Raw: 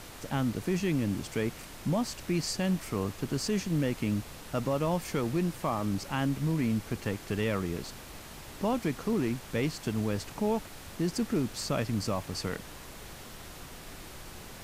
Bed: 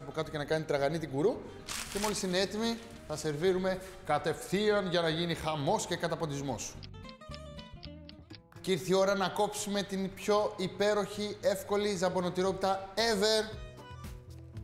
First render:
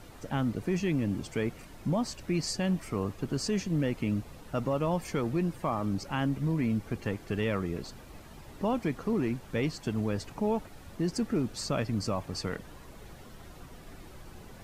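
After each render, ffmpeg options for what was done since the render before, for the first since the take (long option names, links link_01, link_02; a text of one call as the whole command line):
ffmpeg -i in.wav -af "afftdn=noise_reduction=10:noise_floor=-46" out.wav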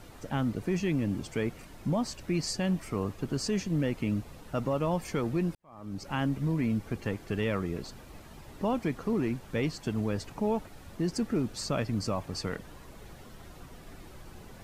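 ffmpeg -i in.wav -filter_complex "[0:a]asplit=2[link_01][link_02];[link_01]atrim=end=5.55,asetpts=PTS-STARTPTS,afade=type=out:start_time=5.546:duration=0.004:curve=hsin[link_03];[link_02]atrim=start=5.55,asetpts=PTS-STARTPTS,afade=type=in:duration=0.56:curve=qua[link_04];[link_03][link_04]concat=n=2:v=0:a=1" out.wav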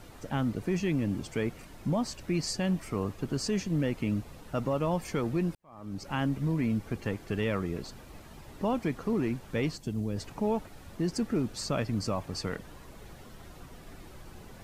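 ffmpeg -i in.wav -filter_complex "[0:a]asplit=3[link_01][link_02][link_03];[link_01]afade=type=out:start_time=9.76:duration=0.02[link_04];[link_02]equalizer=frequency=1400:width_type=o:width=2.7:gain=-12.5,afade=type=in:start_time=9.76:duration=0.02,afade=type=out:start_time=10.16:duration=0.02[link_05];[link_03]afade=type=in:start_time=10.16:duration=0.02[link_06];[link_04][link_05][link_06]amix=inputs=3:normalize=0" out.wav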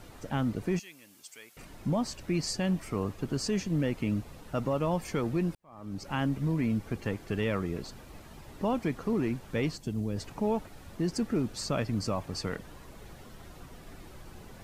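ffmpeg -i in.wav -filter_complex "[0:a]asettb=1/sr,asplit=3[link_01][link_02][link_03];[link_01]atrim=end=0.794[link_04];[link_02]atrim=start=0.79:end=1.57,asetpts=PTS-STARTPTS,afade=type=in:duration=0.004:curve=qsin,afade=type=out:start_time=0.776:duration=0.004:curve=qsin,aderivative[link_05];[link_03]atrim=start=1.566[link_06];[link_04][link_05]acrossfade=duration=0.004:curve1=hsin:curve2=qsin[link_07];[link_07][link_06]acrossfade=duration=0.004:curve1=qsin:curve2=hsin" out.wav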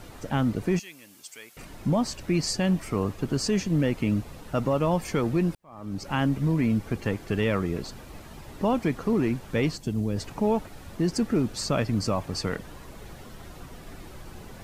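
ffmpeg -i in.wav -af "volume=5dB" out.wav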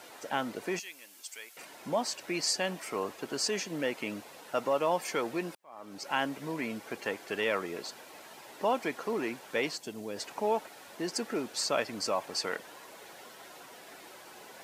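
ffmpeg -i in.wav -af "highpass=520,bandreject=frequency=1200:width=13" out.wav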